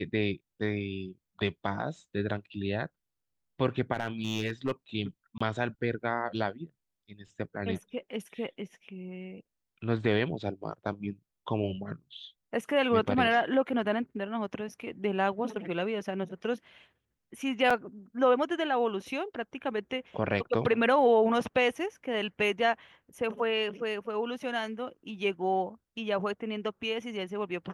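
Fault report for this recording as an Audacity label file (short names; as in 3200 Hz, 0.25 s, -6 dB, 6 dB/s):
3.940000	4.720000	clipped -24 dBFS
5.380000	5.410000	gap 25 ms
17.700000	17.700000	gap 4.7 ms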